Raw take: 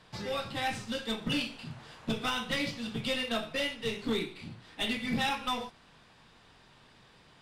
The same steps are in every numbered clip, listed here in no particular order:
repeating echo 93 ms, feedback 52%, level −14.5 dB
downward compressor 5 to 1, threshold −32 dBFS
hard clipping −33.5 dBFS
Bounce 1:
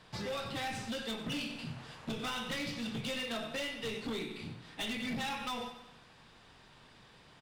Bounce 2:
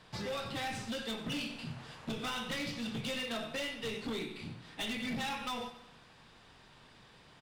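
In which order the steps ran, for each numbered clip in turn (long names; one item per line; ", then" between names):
repeating echo, then downward compressor, then hard clipping
downward compressor, then repeating echo, then hard clipping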